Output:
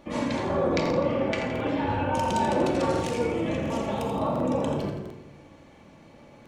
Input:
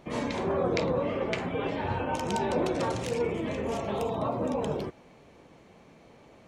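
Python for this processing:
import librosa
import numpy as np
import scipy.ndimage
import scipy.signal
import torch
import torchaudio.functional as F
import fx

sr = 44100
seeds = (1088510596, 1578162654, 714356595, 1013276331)

p1 = x + fx.echo_feedback(x, sr, ms=84, feedback_pct=50, wet_db=-8.0, dry=0)
p2 = fx.room_shoebox(p1, sr, seeds[0], volume_m3=2300.0, walls='furnished', distance_m=2.4)
y = fx.buffer_crackle(p2, sr, first_s=0.81, period_s=0.7, block=2048, kind='repeat')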